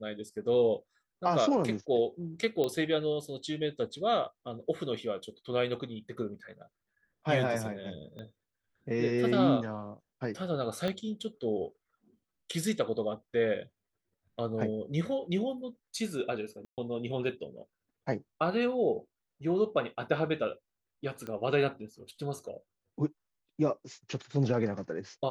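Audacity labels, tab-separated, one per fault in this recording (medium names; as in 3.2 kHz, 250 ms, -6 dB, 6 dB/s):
2.640000	2.640000	pop -18 dBFS
8.190000	8.190000	pop -32 dBFS
10.880000	10.880000	pop -21 dBFS
16.650000	16.780000	dropout 128 ms
21.270000	21.270000	pop -26 dBFS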